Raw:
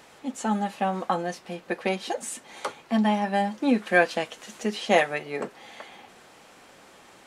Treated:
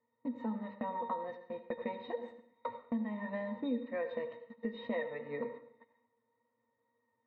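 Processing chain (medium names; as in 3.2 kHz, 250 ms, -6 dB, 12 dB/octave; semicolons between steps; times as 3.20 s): pitch-class resonator A#, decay 0.13 s; gate -52 dBFS, range -26 dB; low-pass 2.9 kHz 6 dB/octave; bass shelf 430 Hz -9.5 dB; compression 4:1, threshold -50 dBFS, peak gain reduction 18 dB; level-controlled noise filter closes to 2.3 kHz, open at -32 dBFS; wow and flutter 16 cents; reverberation RT60 0.60 s, pre-delay 71 ms, DRR 10 dB; trim +14.5 dB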